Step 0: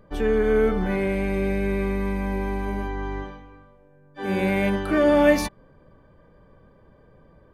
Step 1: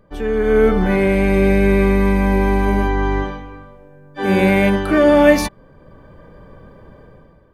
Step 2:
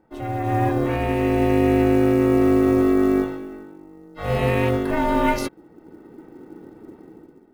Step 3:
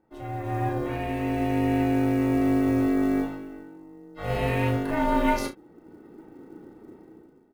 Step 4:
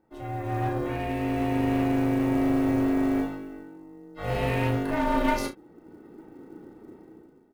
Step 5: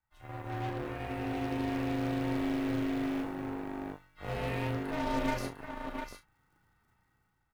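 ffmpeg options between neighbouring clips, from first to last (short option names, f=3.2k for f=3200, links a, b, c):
-af "dynaudnorm=f=110:g=9:m=12dB"
-af "asubboost=boost=4:cutoff=150,aeval=exprs='val(0)*sin(2*PI*320*n/s)':c=same,acrusher=bits=8:mode=log:mix=0:aa=0.000001,volume=-5dB"
-filter_complex "[0:a]dynaudnorm=f=620:g=5:m=4dB,asplit=2[a][b];[b]aecho=0:1:34|66:0.473|0.141[c];[a][c]amix=inputs=2:normalize=0,volume=-8dB"
-af "aeval=exprs='clip(val(0),-1,0.075)':c=same"
-filter_complex "[0:a]aecho=1:1:700:0.447,acrossover=split=120|1000|1800[a][b][c][d];[b]acrusher=bits=4:mix=0:aa=0.5[e];[a][e][c][d]amix=inputs=4:normalize=0,volume=-8.5dB"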